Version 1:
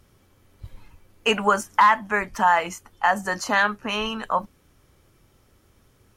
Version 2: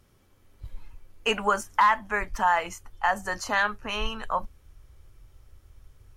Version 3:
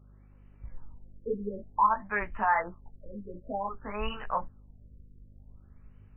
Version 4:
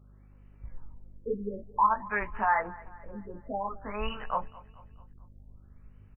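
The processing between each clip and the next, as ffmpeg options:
-af "asubboost=boost=10.5:cutoff=64,volume=0.631"
-af "flanger=delay=15:depth=4.4:speed=1.4,aeval=exprs='val(0)+0.002*(sin(2*PI*50*n/s)+sin(2*PI*2*50*n/s)/2+sin(2*PI*3*50*n/s)/3+sin(2*PI*4*50*n/s)/4+sin(2*PI*5*50*n/s)/5)':c=same,afftfilt=real='re*lt(b*sr/1024,520*pow(3100/520,0.5+0.5*sin(2*PI*0.54*pts/sr)))':imag='im*lt(b*sr/1024,520*pow(3100/520,0.5+0.5*sin(2*PI*0.54*pts/sr)))':win_size=1024:overlap=0.75"
-af "aecho=1:1:219|438|657|876:0.0944|0.0481|0.0246|0.0125"

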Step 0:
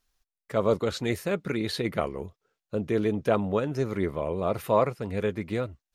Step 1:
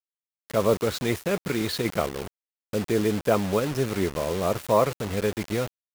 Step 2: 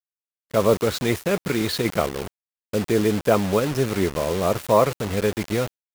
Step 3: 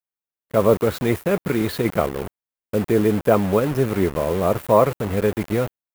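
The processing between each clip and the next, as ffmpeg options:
-af "acrusher=bits=5:mix=0:aa=0.000001,volume=1.26"
-af "agate=range=0.0224:threshold=0.0158:ratio=3:detection=peak,volume=1.5"
-af "equalizer=f=5300:w=0.6:g=-10.5,volume=1.33"

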